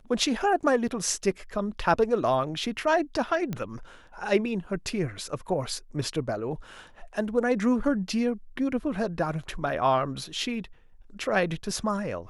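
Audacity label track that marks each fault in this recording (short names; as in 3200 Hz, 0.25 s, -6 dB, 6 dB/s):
0.880000	0.890000	gap 6.2 ms
3.530000	3.530000	pop -18 dBFS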